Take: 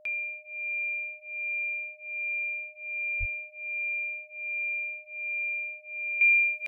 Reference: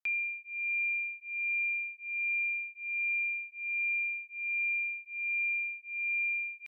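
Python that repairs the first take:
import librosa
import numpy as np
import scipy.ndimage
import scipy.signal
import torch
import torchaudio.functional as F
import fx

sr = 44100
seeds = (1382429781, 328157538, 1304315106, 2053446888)

y = fx.notch(x, sr, hz=610.0, q=30.0)
y = fx.fix_deplosive(y, sr, at_s=(3.19,))
y = fx.fix_level(y, sr, at_s=6.21, step_db=-11.5)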